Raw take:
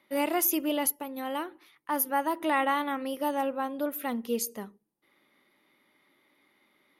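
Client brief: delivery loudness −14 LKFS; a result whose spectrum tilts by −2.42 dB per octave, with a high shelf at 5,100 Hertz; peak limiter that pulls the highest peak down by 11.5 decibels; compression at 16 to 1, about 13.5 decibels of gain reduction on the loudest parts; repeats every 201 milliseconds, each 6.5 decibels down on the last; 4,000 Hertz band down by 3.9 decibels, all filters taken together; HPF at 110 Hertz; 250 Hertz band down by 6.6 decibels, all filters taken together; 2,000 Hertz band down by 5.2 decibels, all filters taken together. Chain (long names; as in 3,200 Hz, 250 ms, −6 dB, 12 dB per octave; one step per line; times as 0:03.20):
high-pass filter 110 Hz
parametric band 250 Hz −8 dB
parametric band 2,000 Hz −5.5 dB
parametric band 4,000 Hz −4.5 dB
high-shelf EQ 5,100 Hz +3.5 dB
downward compressor 16 to 1, threshold −33 dBFS
brickwall limiter −31.5 dBFS
repeating echo 201 ms, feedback 47%, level −6.5 dB
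level +26.5 dB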